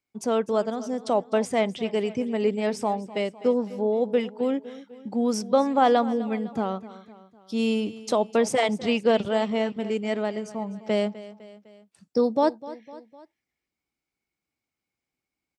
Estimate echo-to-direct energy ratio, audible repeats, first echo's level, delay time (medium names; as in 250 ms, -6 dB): -15.5 dB, 3, -17.0 dB, 253 ms